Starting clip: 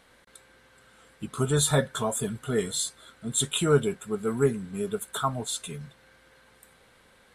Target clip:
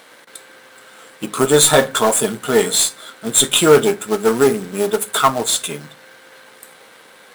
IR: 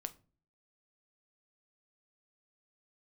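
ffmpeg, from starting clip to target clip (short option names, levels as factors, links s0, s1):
-filter_complex "[0:a]aeval=exprs='if(lt(val(0),0),0.447*val(0),val(0))':c=same,highpass=290,acrusher=bits=3:mode=log:mix=0:aa=0.000001,aeval=exprs='0.266*sin(PI/2*1.78*val(0)/0.266)':c=same,asplit=2[s0][s1];[1:a]atrim=start_sample=2205[s2];[s1][s2]afir=irnorm=-1:irlink=0,volume=2.51[s3];[s0][s3]amix=inputs=2:normalize=0,volume=0.891"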